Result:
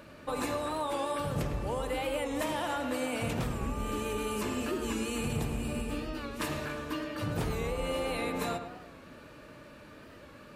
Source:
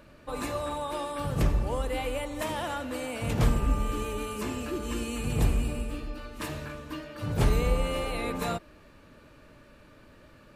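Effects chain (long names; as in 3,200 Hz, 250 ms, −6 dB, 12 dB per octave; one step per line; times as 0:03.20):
high-pass filter 110 Hz 6 dB per octave
downward compressor, threshold −34 dBFS, peak gain reduction 11.5 dB
on a send: feedback echo with a low-pass in the loop 106 ms, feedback 53%, low-pass 2,700 Hz, level −8 dB
on the sum: wow of a warped record 45 rpm, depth 100 cents
level +4 dB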